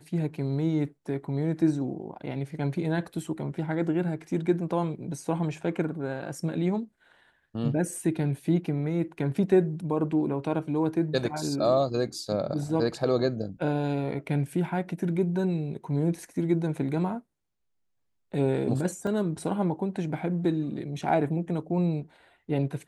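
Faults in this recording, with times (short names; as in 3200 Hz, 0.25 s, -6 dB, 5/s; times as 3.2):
19.07 gap 2.8 ms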